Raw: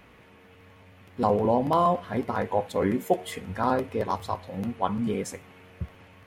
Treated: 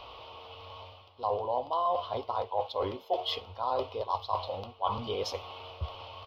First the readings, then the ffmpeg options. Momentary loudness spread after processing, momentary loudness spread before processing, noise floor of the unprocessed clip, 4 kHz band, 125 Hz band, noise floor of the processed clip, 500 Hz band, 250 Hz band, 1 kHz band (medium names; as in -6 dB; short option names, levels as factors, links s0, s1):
16 LU, 17 LU, -54 dBFS, +6.0 dB, -10.0 dB, -55 dBFS, -6.0 dB, -18.0 dB, -3.5 dB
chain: -af "firequalizer=gain_entry='entry(100,0);entry(160,-20);entry(380,-2);entry(590,8);entry(1100,11);entry(1700,-16);entry(3000,13);entry(5000,10);entry(8000,-28);entry(12000,-10)':delay=0.05:min_phase=1,areverse,acompressor=threshold=0.0224:ratio=4,areverse,volume=1.33"